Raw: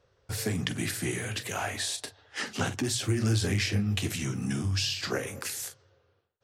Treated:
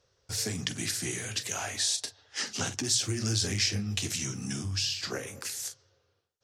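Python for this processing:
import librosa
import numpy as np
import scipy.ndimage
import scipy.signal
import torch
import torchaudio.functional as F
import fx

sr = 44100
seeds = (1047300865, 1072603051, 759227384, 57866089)

y = fx.peak_eq(x, sr, hz=5800.0, db=fx.steps((0.0, 13.0), (4.64, 6.5), (5.65, 12.5)), octaves=1.3)
y = y * librosa.db_to_amplitude(-5.0)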